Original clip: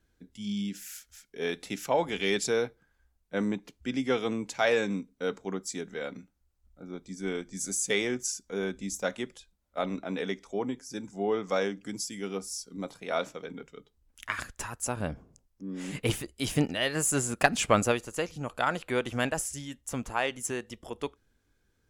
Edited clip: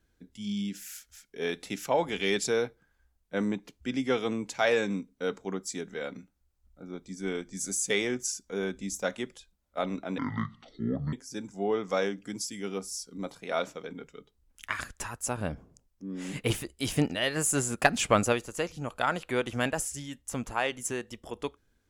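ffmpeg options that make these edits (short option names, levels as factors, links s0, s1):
-filter_complex "[0:a]asplit=3[s0][s1][s2];[s0]atrim=end=10.184[s3];[s1]atrim=start=10.18:end=10.72,asetpts=PTS-STARTPTS,asetrate=25137,aresample=44100[s4];[s2]atrim=start=10.716[s5];[s3][s4]acrossfade=d=0.004:c1=hsin:c2=hsin[s6];[s6][s5]acrossfade=d=0.004:c1=hsin:c2=hsin"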